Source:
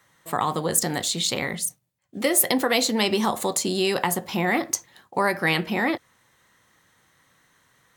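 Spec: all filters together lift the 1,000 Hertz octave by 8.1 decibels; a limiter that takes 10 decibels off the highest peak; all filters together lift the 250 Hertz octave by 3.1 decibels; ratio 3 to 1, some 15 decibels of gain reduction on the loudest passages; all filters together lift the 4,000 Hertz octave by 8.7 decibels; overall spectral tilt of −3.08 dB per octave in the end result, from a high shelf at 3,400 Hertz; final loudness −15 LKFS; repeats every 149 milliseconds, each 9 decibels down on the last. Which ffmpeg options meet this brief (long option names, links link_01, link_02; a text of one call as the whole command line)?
ffmpeg -i in.wav -af "equalizer=frequency=250:width_type=o:gain=3.5,equalizer=frequency=1000:width_type=o:gain=9,highshelf=frequency=3400:gain=7.5,equalizer=frequency=4000:width_type=o:gain=5,acompressor=threshold=-30dB:ratio=3,alimiter=limit=-19.5dB:level=0:latency=1,aecho=1:1:149|298|447|596:0.355|0.124|0.0435|0.0152,volume=15.5dB" out.wav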